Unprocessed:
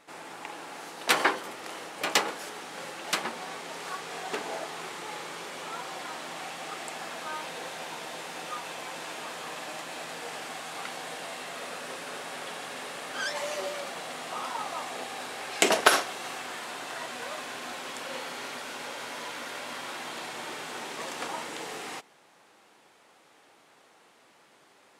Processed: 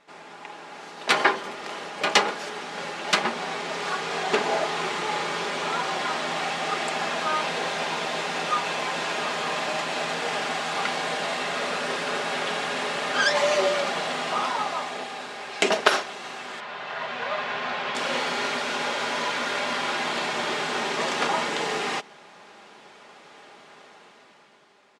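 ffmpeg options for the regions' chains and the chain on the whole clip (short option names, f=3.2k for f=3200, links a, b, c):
-filter_complex "[0:a]asettb=1/sr,asplit=3[a][b][c];[a]atrim=end=16.604[d];[b]atrim=start=16.6:end=17.95,asetpts=PTS-STARTPTS,afade=t=in:d=0.004:c=qsin,afade=t=out:st=1.346:d=0.004:c=qsin,lowpass=3.3k,equalizer=f=300:t=o:w=0.49:g=-13[e];[c]atrim=start=17.946[f];[d][e]acrossfade=d=0.004:c1=hsin:c2=qsin[g];[g][f]acrossfade=d=0.004:c1=qsin:c2=hsin,lowpass=5.8k,aecho=1:1:4.9:0.38,dynaudnorm=f=170:g=13:m=11.5dB,volume=-1dB"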